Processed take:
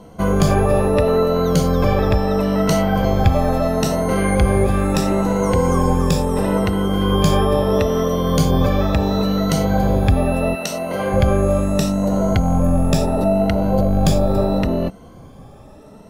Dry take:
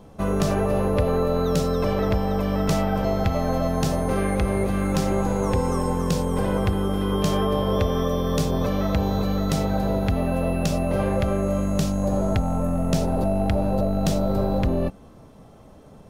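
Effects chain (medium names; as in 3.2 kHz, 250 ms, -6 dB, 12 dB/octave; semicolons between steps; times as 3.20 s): drifting ripple filter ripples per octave 1.9, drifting +0.74 Hz, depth 11 dB; 10.54–11.12 s: high-pass 890 Hz -> 340 Hz 6 dB/octave; trim +4.5 dB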